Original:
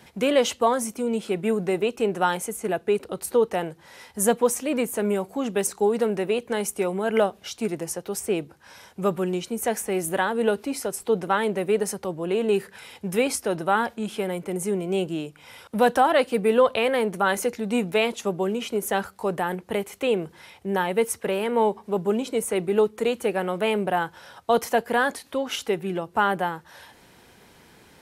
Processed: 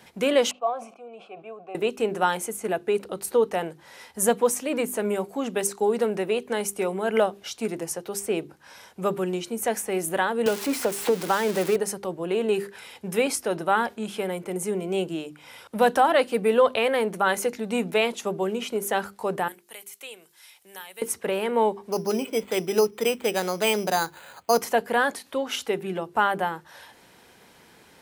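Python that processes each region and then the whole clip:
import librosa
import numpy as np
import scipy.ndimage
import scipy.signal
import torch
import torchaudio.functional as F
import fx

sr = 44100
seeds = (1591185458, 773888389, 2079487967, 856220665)

y = fx.chain(x, sr, fx.vowel_filter(vowel='a'),
    fx.high_shelf(hz=6100.0, db=-7.0),
    fx.sustainer(db_per_s=110.0), at=(0.51, 1.75))
y = fx.chain(y, sr, fx.crossing_spikes(level_db=-15.5),
    fx.lowpass(hz=2000.0, slope=6),
    fx.band_squash(depth_pct=100), at=(10.46, 11.76))
y = fx.chain(y, sr, fx.pre_emphasis(coefficient=0.97),
    fx.band_squash(depth_pct=40), at=(19.48, 21.02))
y = fx.chain(y, sr, fx.peak_eq(hz=2600.0, db=8.0, octaves=0.56),
    fx.resample_bad(factor=8, down='filtered', up='hold'), at=(21.92, 24.62))
y = fx.low_shelf(y, sr, hz=120.0, db=-8.0)
y = fx.hum_notches(y, sr, base_hz=50, count=8)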